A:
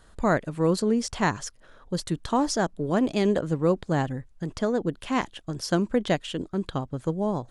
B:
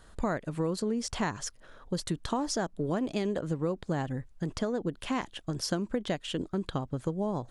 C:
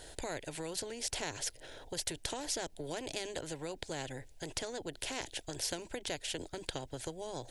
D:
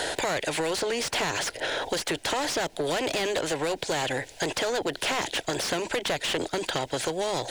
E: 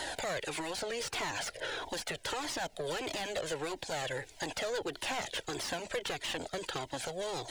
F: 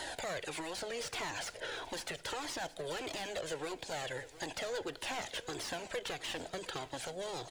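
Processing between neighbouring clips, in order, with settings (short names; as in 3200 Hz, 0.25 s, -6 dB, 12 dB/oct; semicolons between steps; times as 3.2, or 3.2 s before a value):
compressor, threshold -27 dBFS, peak gain reduction 10 dB
fixed phaser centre 490 Hz, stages 4; spectral compressor 2:1; gain +4.5 dB
overdrive pedal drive 29 dB, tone 2900 Hz, clips at -16.5 dBFS; three-band squash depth 70%
cascading flanger falling 1.6 Hz; gain -4 dB
echo 0.717 s -17.5 dB; reverb RT60 0.85 s, pre-delay 3 ms, DRR 16.5 dB; gain -3.5 dB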